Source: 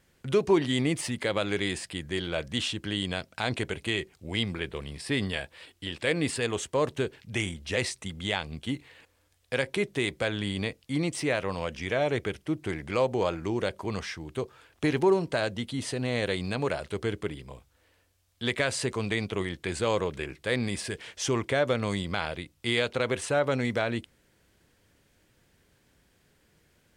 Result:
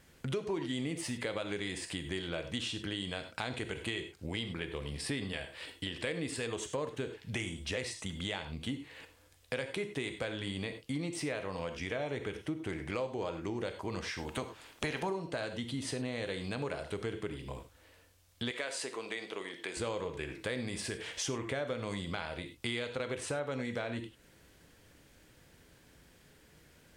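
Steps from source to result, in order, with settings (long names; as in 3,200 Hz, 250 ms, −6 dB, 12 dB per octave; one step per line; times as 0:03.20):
0:14.17–0:15.09: ceiling on every frequency bin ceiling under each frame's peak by 15 dB
reverb whose tail is shaped and stops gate 120 ms flat, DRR 8 dB
downward compressor 4 to 1, threshold −40 dBFS, peak gain reduction 18 dB
0:18.51–0:19.77: high-pass filter 390 Hz 12 dB per octave
level +4 dB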